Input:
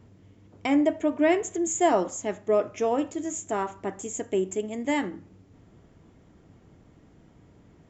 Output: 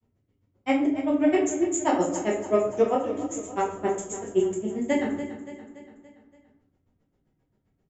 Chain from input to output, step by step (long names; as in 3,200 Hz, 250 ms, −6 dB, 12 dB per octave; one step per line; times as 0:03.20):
noise gate −43 dBFS, range −19 dB
granular cloud 82 ms, grains 7.6 per second, spray 26 ms, pitch spread up and down by 0 semitones
repeating echo 286 ms, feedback 53%, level −12.5 dB
rectangular room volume 72 cubic metres, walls mixed, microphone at 0.99 metres
level +2.5 dB